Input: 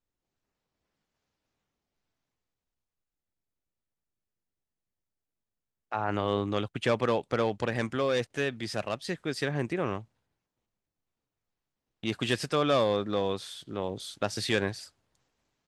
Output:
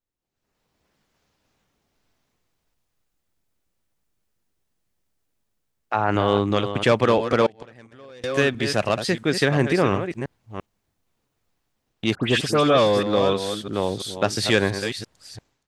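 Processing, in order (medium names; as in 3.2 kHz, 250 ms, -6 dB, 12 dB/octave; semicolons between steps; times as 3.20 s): chunks repeated in reverse 342 ms, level -9 dB; level rider gain up to 15 dB; 7.46–8.24 s: inverted gate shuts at -12 dBFS, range -26 dB; 12.15–13.03 s: phase dispersion highs, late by 90 ms, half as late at 2.6 kHz; trim -3 dB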